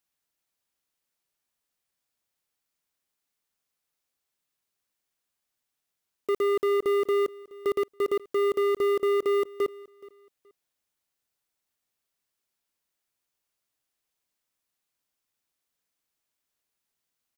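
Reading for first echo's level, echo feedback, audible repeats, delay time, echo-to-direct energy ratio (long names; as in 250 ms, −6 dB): −21.5 dB, 26%, 2, 424 ms, −21.0 dB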